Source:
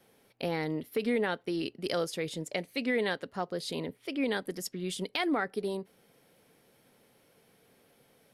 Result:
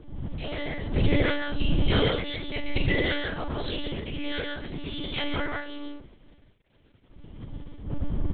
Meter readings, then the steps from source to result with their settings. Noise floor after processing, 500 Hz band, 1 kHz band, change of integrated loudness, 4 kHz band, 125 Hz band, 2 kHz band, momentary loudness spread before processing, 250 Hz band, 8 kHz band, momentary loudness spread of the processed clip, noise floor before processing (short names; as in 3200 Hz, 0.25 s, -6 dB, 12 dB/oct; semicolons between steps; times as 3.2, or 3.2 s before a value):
-61 dBFS, +1.0 dB, +1.0 dB, +4.0 dB, +7.0 dB, +13.5 dB, +5.0 dB, 7 LU, +3.0 dB, under -35 dB, 16 LU, -66 dBFS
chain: frequency quantiser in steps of 2 st; wind noise 88 Hz -29 dBFS; de-hum 60.64 Hz, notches 17; hard clip -15.5 dBFS, distortion -17 dB; transient shaper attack -8 dB, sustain +7 dB; crossover distortion -41 dBFS; tapped delay 44/131/177/226 ms -5.5/-4/-5.5/-13.5 dB; monotone LPC vocoder at 8 kHz 290 Hz